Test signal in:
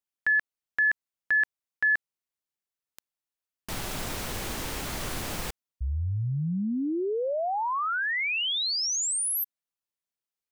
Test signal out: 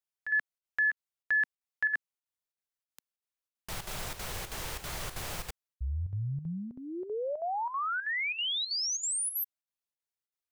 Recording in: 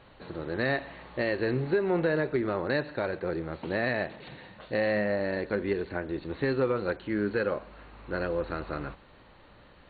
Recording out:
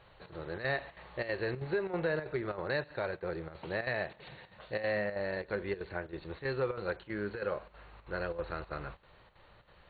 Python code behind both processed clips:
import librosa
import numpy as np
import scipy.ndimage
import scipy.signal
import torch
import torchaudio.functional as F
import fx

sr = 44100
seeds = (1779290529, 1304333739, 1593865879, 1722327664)

y = fx.chopper(x, sr, hz=3.1, depth_pct=65, duty_pct=80)
y = fx.peak_eq(y, sr, hz=260.0, db=-12.0, octaves=0.66)
y = F.gain(torch.from_numpy(y), -3.5).numpy()